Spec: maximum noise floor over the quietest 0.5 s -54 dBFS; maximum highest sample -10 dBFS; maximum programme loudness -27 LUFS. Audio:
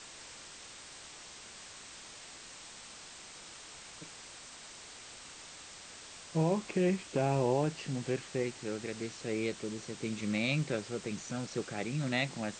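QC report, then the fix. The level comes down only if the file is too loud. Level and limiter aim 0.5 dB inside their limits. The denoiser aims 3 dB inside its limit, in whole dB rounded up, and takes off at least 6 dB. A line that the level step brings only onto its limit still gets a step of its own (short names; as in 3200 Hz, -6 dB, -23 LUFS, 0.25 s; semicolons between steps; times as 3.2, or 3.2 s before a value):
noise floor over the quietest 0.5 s -50 dBFS: fail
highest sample -18.0 dBFS: OK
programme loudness -34.5 LUFS: OK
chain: denoiser 7 dB, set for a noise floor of -50 dBFS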